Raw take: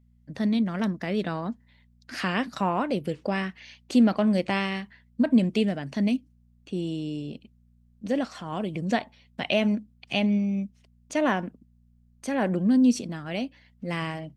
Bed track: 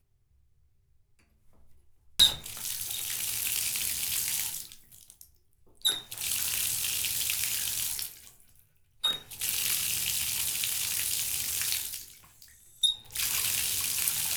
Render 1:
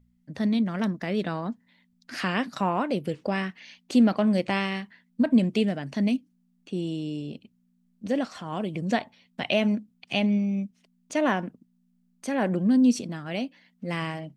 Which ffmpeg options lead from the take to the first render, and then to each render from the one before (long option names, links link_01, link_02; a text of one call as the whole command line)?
ffmpeg -i in.wav -af "bandreject=frequency=60:width_type=h:width=4,bandreject=frequency=120:width_type=h:width=4" out.wav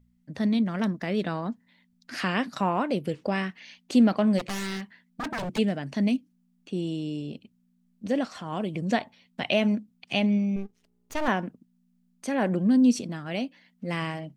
ffmpeg -i in.wav -filter_complex "[0:a]asplit=3[link_01][link_02][link_03];[link_01]afade=type=out:start_time=4.38:duration=0.02[link_04];[link_02]aeval=exprs='0.0473*(abs(mod(val(0)/0.0473+3,4)-2)-1)':channel_layout=same,afade=type=in:start_time=4.38:duration=0.02,afade=type=out:start_time=5.57:duration=0.02[link_05];[link_03]afade=type=in:start_time=5.57:duration=0.02[link_06];[link_04][link_05][link_06]amix=inputs=3:normalize=0,asettb=1/sr,asplit=3[link_07][link_08][link_09];[link_07]atrim=end=10.564[link_10];[link_08]atrim=start=10.56:end=11.28,asetpts=PTS-STARTPTS,afade=type=in:duration=0.004:curve=qsin,afade=type=out:start_time=0.716:duration=0.004:curve=qsin,aeval=exprs='max(val(0),0)':channel_layout=same[link_11];[link_09]atrim=start=11.276[link_12];[link_10][link_11]acrossfade=duration=0.004:curve1=hsin:curve2=qsin[link_13];[link_13][link_12]acrossfade=duration=0.004:curve1=qsin:curve2=hsin" out.wav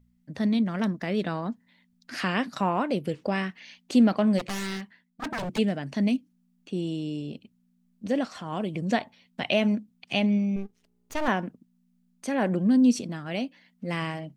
ffmpeg -i in.wav -filter_complex "[0:a]asplit=2[link_01][link_02];[link_01]atrim=end=5.22,asetpts=PTS-STARTPTS,afade=type=out:start_time=4.73:duration=0.49:silence=0.281838[link_03];[link_02]atrim=start=5.22,asetpts=PTS-STARTPTS,afade=type=in:duration=0.004:curve=hsin:silence=0.281838[link_04];[link_03][link_04]concat=n=2:v=0:a=1" out.wav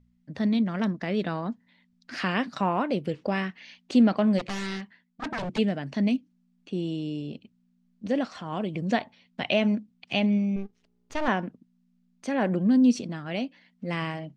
ffmpeg -i in.wav -af "lowpass=5800" out.wav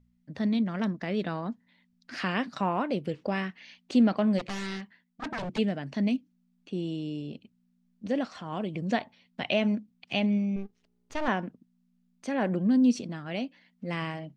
ffmpeg -i in.wav -af "volume=-2.5dB" out.wav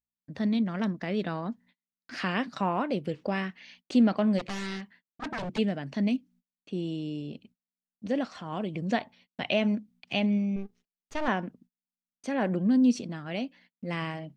ffmpeg -i in.wav -af "agate=range=-35dB:threshold=-56dB:ratio=16:detection=peak" out.wav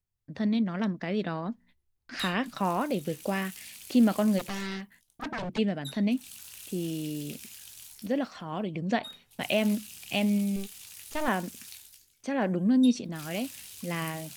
ffmpeg -i in.wav -i bed.wav -filter_complex "[1:a]volume=-16dB[link_01];[0:a][link_01]amix=inputs=2:normalize=0" out.wav